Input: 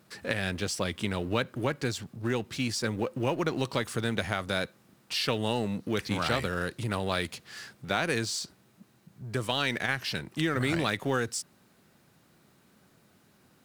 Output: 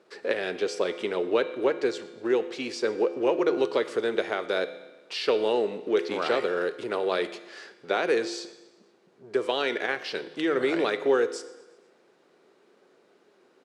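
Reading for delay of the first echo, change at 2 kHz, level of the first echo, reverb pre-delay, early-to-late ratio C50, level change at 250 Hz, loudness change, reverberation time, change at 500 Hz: 121 ms, 0.0 dB, -22.0 dB, 6 ms, 13.0 dB, +0.5 dB, +3.0 dB, 1.1 s, +8.5 dB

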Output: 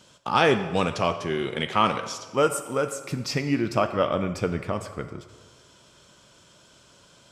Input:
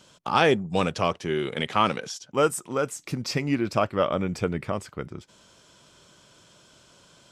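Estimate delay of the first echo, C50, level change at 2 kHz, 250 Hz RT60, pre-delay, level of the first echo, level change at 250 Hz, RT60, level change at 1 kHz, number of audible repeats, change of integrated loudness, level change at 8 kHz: no echo, 10.0 dB, +1.0 dB, 1.6 s, 3 ms, no echo, +0.5 dB, 1.4 s, +1.0 dB, no echo, +0.5 dB, +0.5 dB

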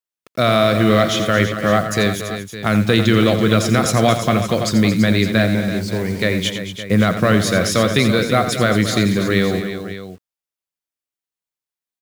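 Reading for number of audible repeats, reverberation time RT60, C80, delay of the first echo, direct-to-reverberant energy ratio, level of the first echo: 4, no reverb, no reverb, 86 ms, no reverb, -10.5 dB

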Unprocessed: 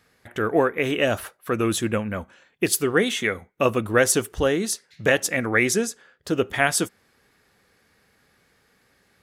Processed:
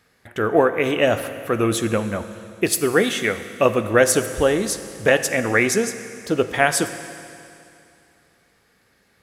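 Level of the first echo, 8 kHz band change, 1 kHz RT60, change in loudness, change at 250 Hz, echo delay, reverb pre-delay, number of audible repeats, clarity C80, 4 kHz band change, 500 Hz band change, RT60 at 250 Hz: no echo, +1.5 dB, 2.6 s, +3.0 dB, +2.5 dB, no echo, 20 ms, no echo, 12.0 dB, +1.5 dB, +4.0 dB, 2.6 s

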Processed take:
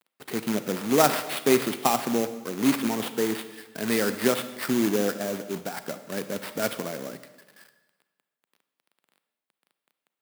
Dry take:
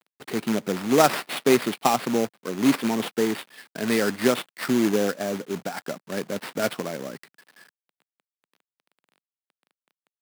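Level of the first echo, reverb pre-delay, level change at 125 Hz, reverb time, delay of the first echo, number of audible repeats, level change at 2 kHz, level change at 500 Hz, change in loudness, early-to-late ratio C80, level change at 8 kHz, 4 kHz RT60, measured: no echo, 31 ms, -2.0 dB, 1.3 s, no echo, no echo, -2.0 dB, -2.0 dB, -1.5 dB, 13.5 dB, +0.5 dB, 1.1 s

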